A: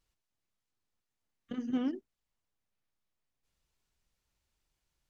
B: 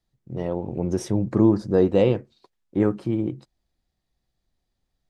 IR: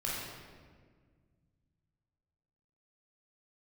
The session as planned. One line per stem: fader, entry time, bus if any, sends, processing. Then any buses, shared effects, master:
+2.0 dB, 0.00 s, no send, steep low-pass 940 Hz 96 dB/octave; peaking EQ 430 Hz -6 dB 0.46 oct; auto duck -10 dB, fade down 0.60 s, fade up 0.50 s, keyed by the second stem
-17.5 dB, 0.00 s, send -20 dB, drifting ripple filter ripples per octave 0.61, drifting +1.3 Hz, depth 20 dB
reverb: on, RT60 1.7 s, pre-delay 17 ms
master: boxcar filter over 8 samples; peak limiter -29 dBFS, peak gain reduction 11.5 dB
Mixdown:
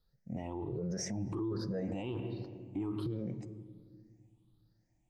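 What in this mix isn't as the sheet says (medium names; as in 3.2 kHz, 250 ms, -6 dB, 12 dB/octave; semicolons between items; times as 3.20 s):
stem B -17.5 dB -> -7.0 dB; master: missing boxcar filter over 8 samples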